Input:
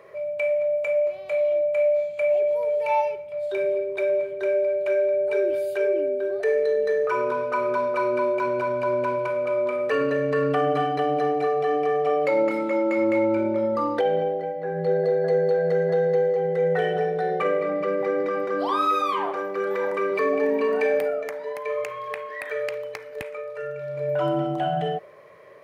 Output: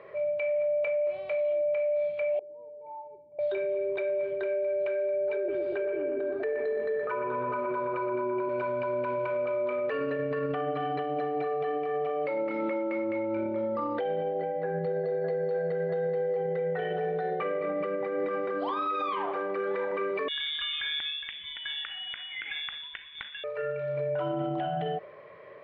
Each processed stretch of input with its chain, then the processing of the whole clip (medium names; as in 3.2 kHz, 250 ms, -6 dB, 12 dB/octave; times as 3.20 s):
2.39–3.39 s: compression, threshold -25 dBFS + cascade formant filter u
5.36–8.49 s: treble shelf 2.6 kHz -9.5 dB + filtered feedback delay 121 ms, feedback 71%, low-pass 2.2 kHz, level -3 dB
20.28–23.44 s: high-pass 1.2 kHz 6 dB/octave + frequency inversion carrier 4 kHz
whole clip: low-pass 3.7 kHz 24 dB/octave; peak limiter -23.5 dBFS